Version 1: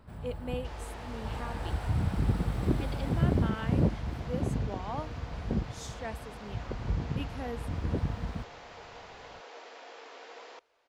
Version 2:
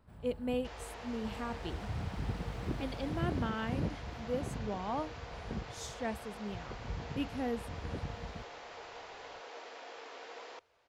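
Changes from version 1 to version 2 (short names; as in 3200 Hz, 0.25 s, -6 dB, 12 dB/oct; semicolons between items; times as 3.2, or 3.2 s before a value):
speech: add bell 91 Hz +12 dB 2.6 oct; first sound -9.5 dB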